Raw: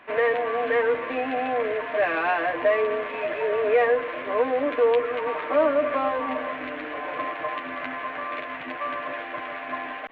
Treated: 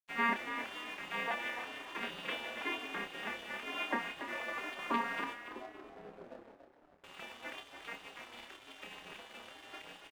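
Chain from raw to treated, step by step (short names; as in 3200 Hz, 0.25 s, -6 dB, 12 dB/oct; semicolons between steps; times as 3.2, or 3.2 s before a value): arpeggiated vocoder major triad, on A#3, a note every 0.327 s; spectral gate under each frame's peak -20 dB weak; 5.34–7.04 Gaussian blur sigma 11 samples; crossover distortion -57.5 dBFS; doubler 29 ms -7 dB; frequency-shifting echo 0.283 s, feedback 33%, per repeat +37 Hz, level -9.5 dB; gain +4 dB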